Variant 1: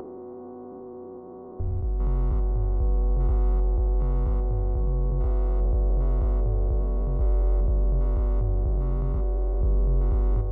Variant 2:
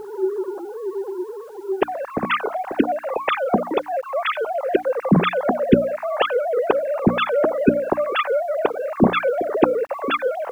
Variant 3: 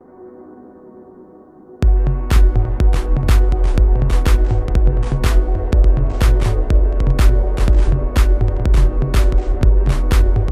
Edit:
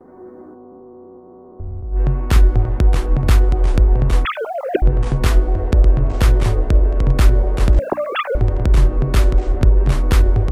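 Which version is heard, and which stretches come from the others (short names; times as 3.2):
3
0.55–1.96 from 1, crossfade 0.10 s
4.25–4.82 from 2
7.79–8.35 from 2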